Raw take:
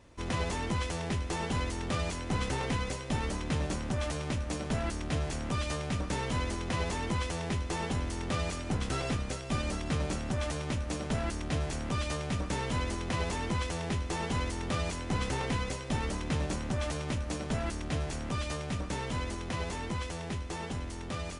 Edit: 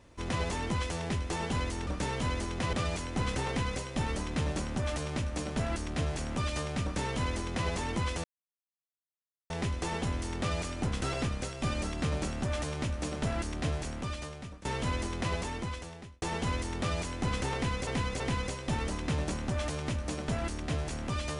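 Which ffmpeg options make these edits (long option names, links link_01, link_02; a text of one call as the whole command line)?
ffmpeg -i in.wav -filter_complex "[0:a]asplit=8[link_01][link_02][link_03][link_04][link_05][link_06][link_07][link_08];[link_01]atrim=end=1.872[link_09];[link_02]atrim=start=5.968:end=6.832[link_10];[link_03]atrim=start=1.868:end=7.38,asetpts=PTS-STARTPTS,afade=type=out:start_time=5.508:duration=0.004:curve=hsin,apad=pad_dur=1.26[link_11];[link_04]atrim=start=7.38:end=12.53,asetpts=PTS-STARTPTS,afade=type=in:duration=0.004:curve=hsin,afade=type=out:start_time=4.16:duration=0.99:silence=0.11885[link_12];[link_05]atrim=start=12.53:end=14.1,asetpts=PTS-STARTPTS,afade=type=in:duration=0.004:curve=hsin:silence=0.11885,afade=type=out:start_time=0.62:duration=0.95[link_13];[link_06]atrim=start=14.1:end=15.752,asetpts=PTS-STARTPTS,afade=type=in:duration=0.004:curve=hsin[link_14];[link_07]atrim=start=15.418:end=15.752[link_15];[link_08]atrim=start=15.418[link_16];[link_09][link_10]acrossfade=duration=0.004:curve1=hsin:curve2=hsin[link_17];[link_11][link_12][link_13][link_14]concat=n=4:v=0:a=1[link_18];[link_17][link_18]acrossfade=duration=0.004:curve1=hsin:curve2=hsin[link_19];[link_19][link_15]acrossfade=duration=0.004:curve1=hsin:curve2=hsin[link_20];[link_20][link_16]acrossfade=duration=0.004:curve1=hsin:curve2=hsin" out.wav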